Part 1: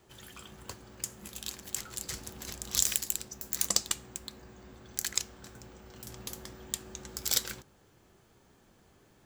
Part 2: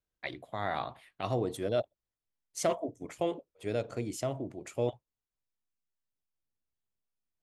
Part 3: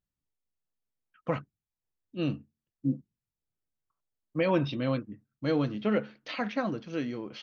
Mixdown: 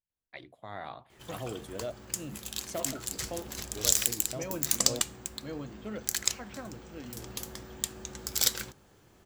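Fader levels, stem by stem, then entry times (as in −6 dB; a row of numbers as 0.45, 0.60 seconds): +2.5, −7.5, −12.5 decibels; 1.10, 0.10, 0.00 seconds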